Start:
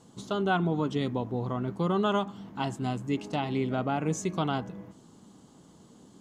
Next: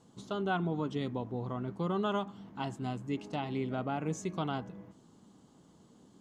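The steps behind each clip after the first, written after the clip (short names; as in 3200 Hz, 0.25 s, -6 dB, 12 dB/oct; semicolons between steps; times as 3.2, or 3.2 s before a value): high shelf 6800 Hz -5 dB; gain -5.5 dB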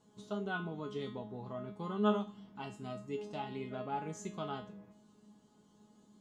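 resonator 210 Hz, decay 0.36 s, harmonics all, mix 90%; gain +7.5 dB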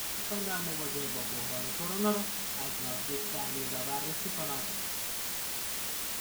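requantised 6-bit, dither triangular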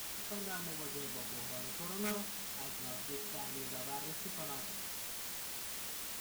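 wrapped overs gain 24 dB; gain -7.5 dB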